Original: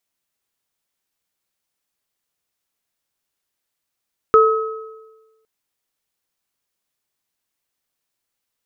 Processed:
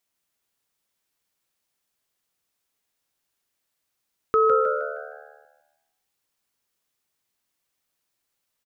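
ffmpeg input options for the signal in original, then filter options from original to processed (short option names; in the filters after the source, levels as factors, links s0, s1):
-f lavfi -i "aevalsrc='0.376*pow(10,-3*t/1.23)*sin(2*PI*442*t)+0.376*pow(10,-3*t/1.01)*sin(2*PI*1280*t)':d=1.11:s=44100"
-filter_complex "[0:a]alimiter=limit=0.237:level=0:latency=1,asplit=6[s0][s1][s2][s3][s4][s5];[s1]adelay=156,afreqshift=75,volume=0.473[s6];[s2]adelay=312,afreqshift=150,volume=0.188[s7];[s3]adelay=468,afreqshift=225,volume=0.0759[s8];[s4]adelay=624,afreqshift=300,volume=0.0302[s9];[s5]adelay=780,afreqshift=375,volume=0.0122[s10];[s0][s6][s7][s8][s9][s10]amix=inputs=6:normalize=0"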